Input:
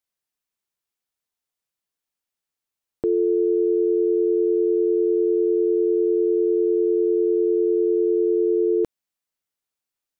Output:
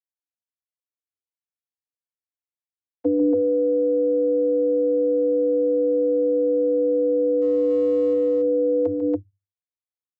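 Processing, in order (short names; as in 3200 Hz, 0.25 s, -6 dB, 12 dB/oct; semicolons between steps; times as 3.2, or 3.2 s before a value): 7.41–8.13 G.711 law mismatch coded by mu; gate with hold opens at -14 dBFS; vocoder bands 32, square 98.4 Hz; on a send: loudspeakers at several distances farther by 50 m -9 dB, 97 m -1 dB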